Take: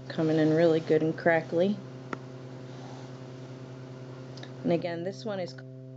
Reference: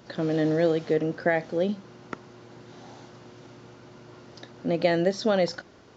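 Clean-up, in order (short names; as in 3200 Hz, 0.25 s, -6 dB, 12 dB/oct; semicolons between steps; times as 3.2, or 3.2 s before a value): de-hum 130.2 Hz, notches 5; gain 0 dB, from 4.81 s +11 dB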